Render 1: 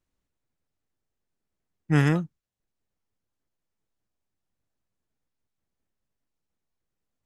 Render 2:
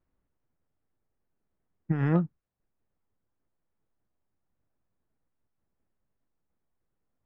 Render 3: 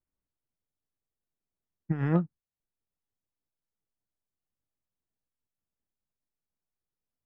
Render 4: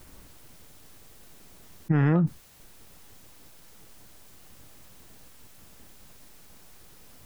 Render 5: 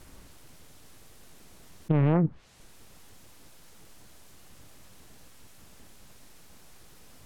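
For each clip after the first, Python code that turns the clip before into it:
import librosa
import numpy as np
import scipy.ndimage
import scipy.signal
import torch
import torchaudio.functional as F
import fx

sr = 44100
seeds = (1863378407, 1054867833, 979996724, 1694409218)

y1 = scipy.signal.sosfilt(scipy.signal.butter(2, 1600.0, 'lowpass', fs=sr, output='sos'), x)
y1 = fx.over_compress(y1, sr, threshold_db=-23.0, ratio=-0.5)
y2 = fx.upward_expand(y1, sr, threshold_db=-45.0, expansion=1.5)
y3 = fx.env_flatten(y2, sr, amount_pct=100)
y4 = fx.env_lowpass_down(y3, sr, base_hz=1000.0, full_db=-20.5)
y4 = fx.doppler_dist(y4, sr, depth_ms=0.94)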